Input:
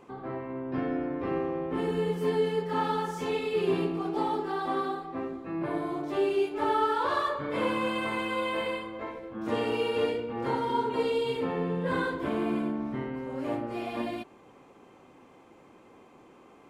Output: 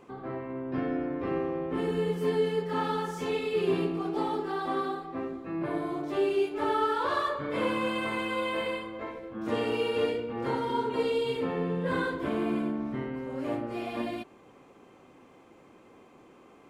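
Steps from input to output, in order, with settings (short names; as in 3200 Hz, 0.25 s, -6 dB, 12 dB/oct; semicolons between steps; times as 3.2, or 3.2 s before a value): bell 880 Hz -3 dB 0.38 oct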